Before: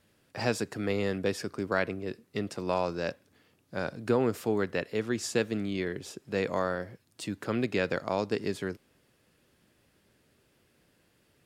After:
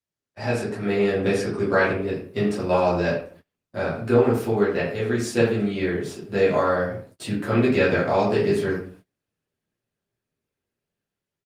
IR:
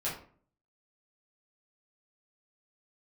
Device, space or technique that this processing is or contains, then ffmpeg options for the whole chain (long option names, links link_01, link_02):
speakerphone in a meeting room: -filter_complex "[1:a]atrim=start_sample=2205[link_01];[0:a][link_01]afir=irnorm=-1:irlink=0,asplit=2[link_02][link_03];[link_03]adelay=80,highpass=300,lowpass=3400,asoftclip=type=hard:threshold=-16.5dB,volume=-11dB[link_04];[link_02][link_04]amix=inputs=2:normalize=0,dynaudnorm=framelen=320:gausssize=5:maxgain=8.5dB,agate=range=-27dB:threshold=-42dB:ratio=16:detection=peak,volume=-3dB" -ar 48000 -c:a libopus -b:a 32k